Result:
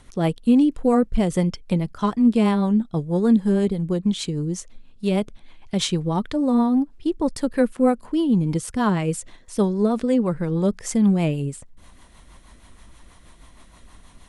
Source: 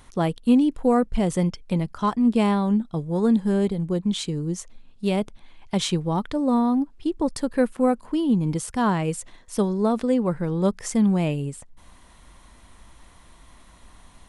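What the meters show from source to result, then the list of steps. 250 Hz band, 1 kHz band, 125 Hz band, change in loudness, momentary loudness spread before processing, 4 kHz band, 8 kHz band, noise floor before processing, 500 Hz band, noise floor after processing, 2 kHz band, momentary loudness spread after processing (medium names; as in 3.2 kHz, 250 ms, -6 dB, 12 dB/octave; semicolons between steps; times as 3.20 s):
+2.0 dB, -1.0 dB, +2.0 dB, +2.0 dB, 8 LU, +1.5 dB, +1.0 dB, -52 dBFS, +1.5 dB, -50 dBFS, +0.5 dB, 9 LU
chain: rotary cabinet horn 6.3 Hz; trim +3.5 dB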